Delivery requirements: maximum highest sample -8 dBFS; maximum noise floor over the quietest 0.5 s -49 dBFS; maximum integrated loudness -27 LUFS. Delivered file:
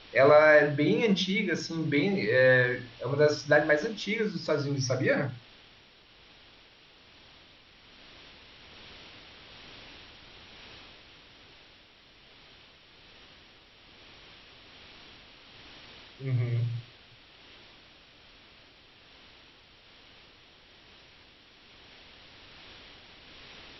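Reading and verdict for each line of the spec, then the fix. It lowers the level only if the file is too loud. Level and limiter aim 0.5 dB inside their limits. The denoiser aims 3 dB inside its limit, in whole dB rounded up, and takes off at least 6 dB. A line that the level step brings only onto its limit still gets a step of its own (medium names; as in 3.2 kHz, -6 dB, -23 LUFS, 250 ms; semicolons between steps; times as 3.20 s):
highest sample -9.0 dBFS: pass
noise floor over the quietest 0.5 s -57 dBFS: pass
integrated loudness -25.5 LUFS: fail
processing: trim -2 dB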